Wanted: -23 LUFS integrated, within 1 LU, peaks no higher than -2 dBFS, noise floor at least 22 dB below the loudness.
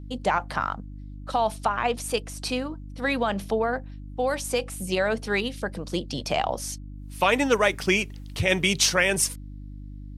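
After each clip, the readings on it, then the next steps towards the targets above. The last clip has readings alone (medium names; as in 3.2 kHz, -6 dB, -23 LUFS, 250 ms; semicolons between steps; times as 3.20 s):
hum 50 Hz; highest harmonic 300 Hz; hum level -36 dBFS; loudness -25.5 LUFS; peak level -6.5 dBFS; loudness target -23.0 LUFS
-> de-hum 50 Hz, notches 6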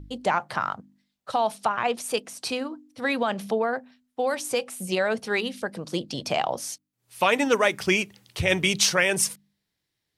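hum not found; loudness -25.5 LUFS; peak level -5.5 dBFS; loudness target -23.0 LUFS
-> trim +2.5 dB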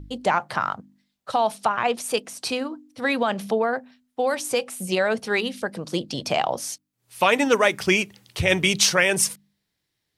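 loudness -23.0 LUFS; peak level -3.0 dBFS; noise floor -78 dBFS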